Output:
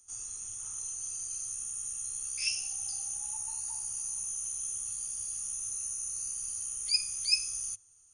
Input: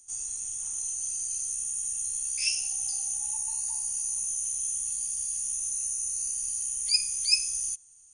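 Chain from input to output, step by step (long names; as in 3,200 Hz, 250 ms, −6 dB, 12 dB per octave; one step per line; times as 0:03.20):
thirty-one-band graphic EQ 100 Hz +9 dB, 400 Hz +4 dB, 1,250 Hz +11 dB, 8,000 Hz −8 dB
level −3 dB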